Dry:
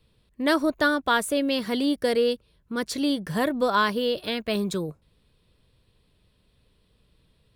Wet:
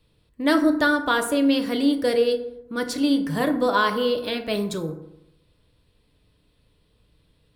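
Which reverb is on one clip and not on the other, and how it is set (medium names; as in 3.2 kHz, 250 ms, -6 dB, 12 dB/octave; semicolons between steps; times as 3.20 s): FDN reverb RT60 0.84 s, low-frequency decay 1.05×, high-frequency decay 0.45×, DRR 5 dB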